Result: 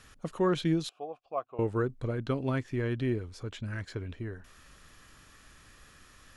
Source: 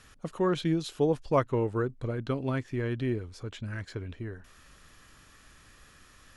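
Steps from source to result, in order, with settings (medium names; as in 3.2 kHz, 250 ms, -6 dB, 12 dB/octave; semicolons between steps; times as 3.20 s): 0.89–1.59 s: vowel filter a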